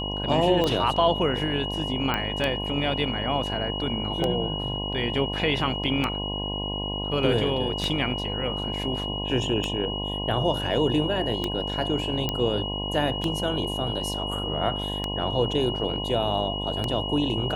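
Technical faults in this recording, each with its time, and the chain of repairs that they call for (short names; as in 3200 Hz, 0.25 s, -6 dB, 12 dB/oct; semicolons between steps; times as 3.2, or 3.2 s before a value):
buzz 50 Hz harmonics 21 -32 dBFS
tick 33 1/3 rpm -12 dBFS
tone 2900 Hz -31 dBFS
2.14 pop -12 dBFS
12.29 pop -11 dBFS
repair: de-click; de-hum 50 Hz, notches 21; notch 2900 Hz, Q 30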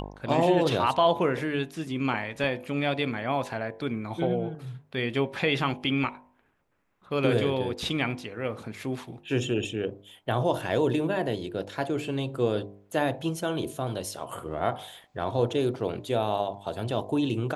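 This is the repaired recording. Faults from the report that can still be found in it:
none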